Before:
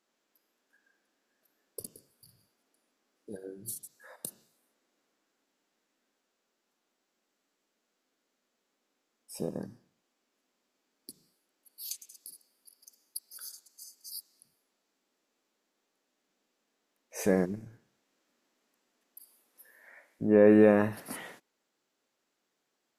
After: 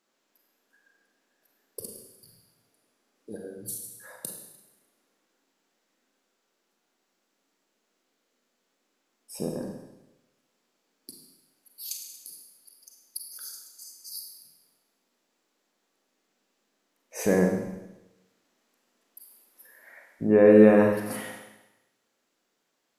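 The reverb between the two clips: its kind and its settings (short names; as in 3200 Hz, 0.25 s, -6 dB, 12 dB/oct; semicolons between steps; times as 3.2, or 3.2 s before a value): Schroeder reverb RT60 1 s, combs from 33 ms, DRR 2.5 dB; gain +2.5 dB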